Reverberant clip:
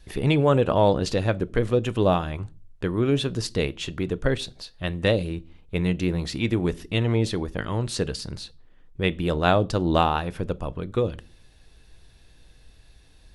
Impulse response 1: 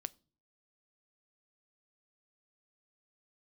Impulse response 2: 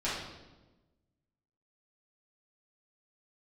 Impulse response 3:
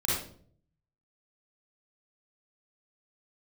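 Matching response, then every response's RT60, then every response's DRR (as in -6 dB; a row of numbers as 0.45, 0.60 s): 1; not exponential, 1.1 s, 0.55 s; 17.0, -10.5, -7.0 dB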